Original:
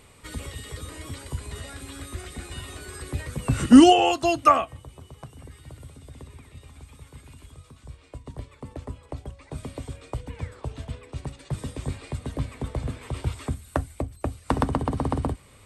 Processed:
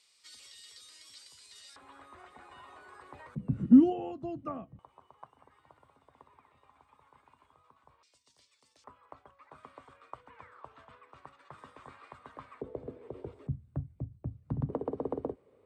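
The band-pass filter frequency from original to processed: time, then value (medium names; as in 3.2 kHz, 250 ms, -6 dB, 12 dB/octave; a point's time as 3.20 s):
band-pass filter, Q 3
5 kHz
from 1.76 s 950 Hz
from 3.35 s 190 Hz
from 4.79 s 980 Hz
from 8.03 s 5.4 kHz
from 8.84 s 1.2 kHz
from 12.61 s 430 Hz
from 13.47 s 140 Hz
from 14.70 s 440 Hz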